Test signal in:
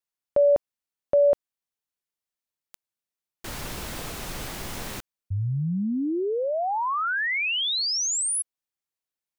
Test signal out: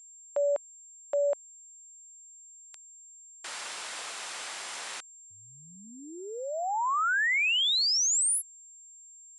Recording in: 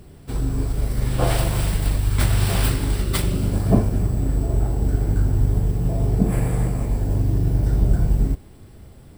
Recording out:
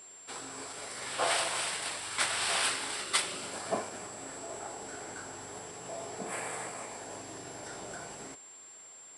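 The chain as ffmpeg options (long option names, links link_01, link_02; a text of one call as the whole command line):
ffmpeg -i in.wav -af "aeval=exprs='val(0)+0.00355*sin(2*PI*7400*n/s)':channel_layout=same,highpass=890,aresample=22050,aresample=44100" out.wav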